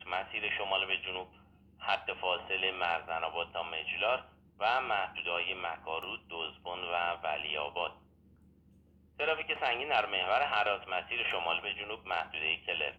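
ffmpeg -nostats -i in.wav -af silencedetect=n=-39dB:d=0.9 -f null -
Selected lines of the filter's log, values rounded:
silence_start: 7.88
silence_end: 9.20 | silence_duration: 1.31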